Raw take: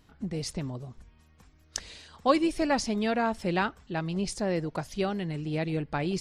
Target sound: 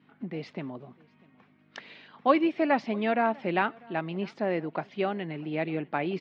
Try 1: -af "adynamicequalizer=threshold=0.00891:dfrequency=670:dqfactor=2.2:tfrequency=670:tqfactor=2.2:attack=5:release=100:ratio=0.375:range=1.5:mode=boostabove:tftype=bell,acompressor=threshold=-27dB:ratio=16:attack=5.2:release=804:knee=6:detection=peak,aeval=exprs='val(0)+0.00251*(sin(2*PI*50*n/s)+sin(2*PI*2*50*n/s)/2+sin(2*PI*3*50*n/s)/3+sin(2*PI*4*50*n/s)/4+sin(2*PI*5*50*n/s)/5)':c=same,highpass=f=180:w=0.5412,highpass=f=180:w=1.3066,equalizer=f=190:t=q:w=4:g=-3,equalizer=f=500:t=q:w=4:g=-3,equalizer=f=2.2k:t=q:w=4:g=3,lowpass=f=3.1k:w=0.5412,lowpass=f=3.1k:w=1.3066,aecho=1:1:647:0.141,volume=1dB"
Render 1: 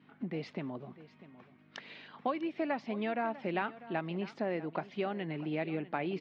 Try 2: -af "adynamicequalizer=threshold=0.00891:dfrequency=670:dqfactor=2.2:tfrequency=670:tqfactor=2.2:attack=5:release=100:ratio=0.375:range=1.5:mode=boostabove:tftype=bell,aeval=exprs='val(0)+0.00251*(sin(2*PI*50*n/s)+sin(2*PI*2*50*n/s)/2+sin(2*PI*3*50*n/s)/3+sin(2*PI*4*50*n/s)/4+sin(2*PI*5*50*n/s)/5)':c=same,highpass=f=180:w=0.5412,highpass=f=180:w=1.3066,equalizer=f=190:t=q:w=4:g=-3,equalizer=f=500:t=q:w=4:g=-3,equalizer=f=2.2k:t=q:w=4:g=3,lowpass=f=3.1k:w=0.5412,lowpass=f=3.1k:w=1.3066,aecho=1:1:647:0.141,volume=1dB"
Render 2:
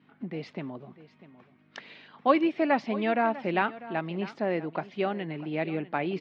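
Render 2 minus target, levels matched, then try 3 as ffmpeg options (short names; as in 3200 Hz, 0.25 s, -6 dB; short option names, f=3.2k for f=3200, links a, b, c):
echo-to-direct +9 dB
-af "adynamicequalizer=threshold=0.00891:dfrequency=670:dqfactor=2.2:tfrequency=670:tqfactor=2.2:attack=5:release=100:ratio=0.375:range=1.5:mode=boostabove:tftype=bell,aeval=exprs='val(0)+0.00251*(sin(2*PI*50*n/s)+sin(2*PI*2*50*n/s)/2+sin(2*PI*3*50*n/s)/3+sin(2*PI*4*50*n/s)/4+sin(2*PI*5*50*n/s)/5)':c=same,highpass=f=180:w=0.5412,highpass=f=180:w=1.3066,equalizer=f=190:t=q:w=4:g=-3,equalizer=f=500:t=q:w=4:g=-3,equalizer=f=2.2k:t=q:w=4:g=3,lowpass=f=3.1k:w=0.5412,lowpass=f=3.1k:w=1.3066,aecho=1:1:647:0.0501,volume=1dB"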